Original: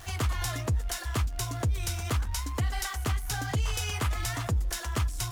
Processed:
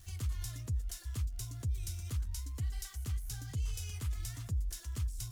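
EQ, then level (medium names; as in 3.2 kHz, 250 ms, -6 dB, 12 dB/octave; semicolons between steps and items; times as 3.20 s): tone controls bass +7 dB, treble +7 dB; amplifier tone stack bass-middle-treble 6-0-2; peaking EQ 550 Hz +9 dB 1.6 oct; -1.5 dB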